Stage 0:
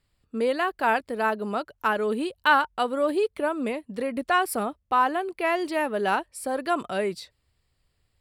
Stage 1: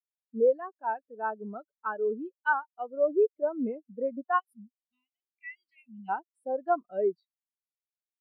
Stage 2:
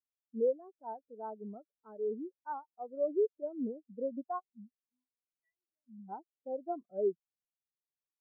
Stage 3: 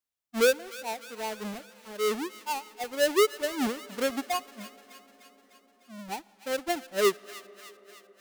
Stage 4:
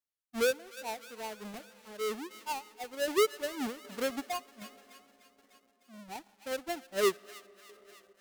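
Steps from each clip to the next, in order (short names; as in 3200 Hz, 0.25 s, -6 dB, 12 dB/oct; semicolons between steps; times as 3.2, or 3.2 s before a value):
spectral gain 4.39–6.09, 250–1900 Hz -29 dB; vocal rider within 4 dB 0.5 s; spectral expander 2.5:1; gain -4 dB
rotary speaker horn 0.65 Hz, later 6 Hz, at 4.78; Gaussian blur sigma 11 samples; gain -1.5 dB
half-waves squared off; thin delay 0.301 s, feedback 61%, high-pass 1400 Hz, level -14 dB; on a send at -22 dB: reverb RT60 5.3 s, pre-delay 35 ms; on the sum: gain +4.5 dB
in parallel at -8 dB: companded quantiser 4-bit; on the sum: wow and flutter 25 cents; tremolo saw down 1.3 Hz, depth 50%; gain -6 dB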